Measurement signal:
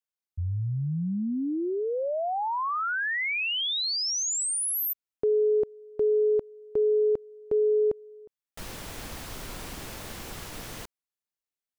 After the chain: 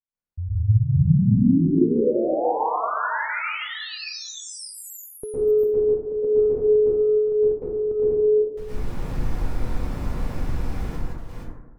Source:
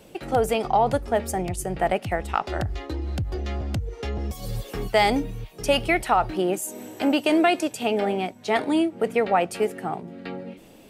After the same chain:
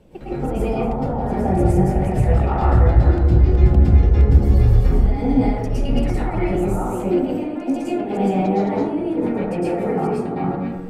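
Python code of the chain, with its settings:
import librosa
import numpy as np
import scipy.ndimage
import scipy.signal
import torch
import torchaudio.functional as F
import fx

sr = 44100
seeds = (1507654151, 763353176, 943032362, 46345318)

y = fx.reverse_delay(x, sr, ms=306, wet_db=-2.5)
y = fx.over_compress(y, sr, threshold_db=-24.0, ratio=-0.5)
y = fx.tilt_eq(y, sr, slope=-3.0)
y = fx.rev_plate(y, sr, seeds[0], rt60_s=1.1, hf_ratio=0.3, predelay_ms=100, drr_db=-10.0)
y = F.gain(torch.from_numpy(y), -10.0).numpy()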